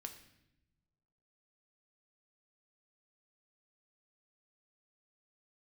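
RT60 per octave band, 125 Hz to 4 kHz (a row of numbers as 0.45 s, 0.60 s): 1.7 s, 1.5 s, 1.1 s, 0.75 s, 0.85 s, 0.75 s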